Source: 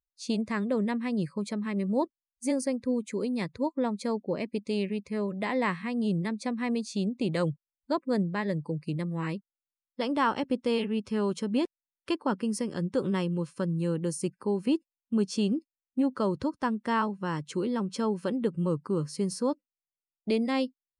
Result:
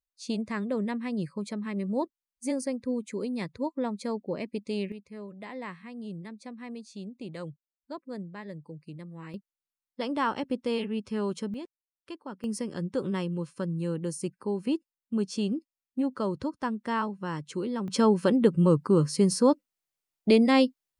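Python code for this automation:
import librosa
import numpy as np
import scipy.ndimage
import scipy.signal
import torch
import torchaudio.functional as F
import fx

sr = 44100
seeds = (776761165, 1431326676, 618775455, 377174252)

y = fx.gain(x, sr, db=fx.steps((0.0, -2.0), (4.92, -11.0), (9.34, -2.0), (11.54, -12.0), (12.44, -2.0), (17.88, 7.0)))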